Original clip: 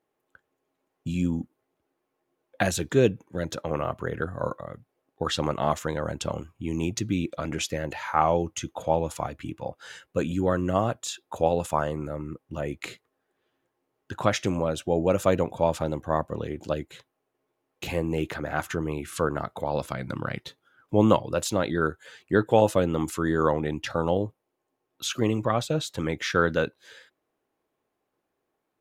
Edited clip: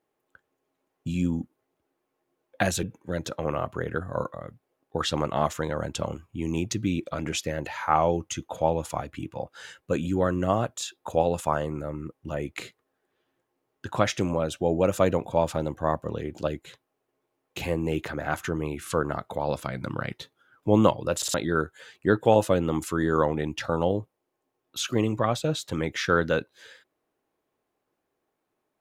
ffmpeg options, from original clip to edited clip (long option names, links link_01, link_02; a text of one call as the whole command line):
ffmpeg -i in.wav -filter_complex "[0:a]asplit=5[link_01][link_02][link_03][link_04][link_05];[link_01]atrim=end=2.832[link_06];[link_02]atrim=start=3.088:end=21.482[link_07];[link_03]atrim=start=21.418:end=21.482[link_08];[link_04]atrim=start=21.418:end=21.482[link_09];[link_05]atrim=start=21.598[link_10];[link_06][link_07]acrossfade=duration=0.004:curve1=hsin:curve2=hsin[link_11];[link_11][link_08]acrossfade=duration=0.004:curve1=hsin:curve2=hsin[link_12];[link_12][link_09]acrossfade=duration=0.004:curve1=hsin:curve2=hsin[link_13];[link_13][link_10]acrossfade=duration=0.004:curve1=hsin:curve2=hsin" out.wav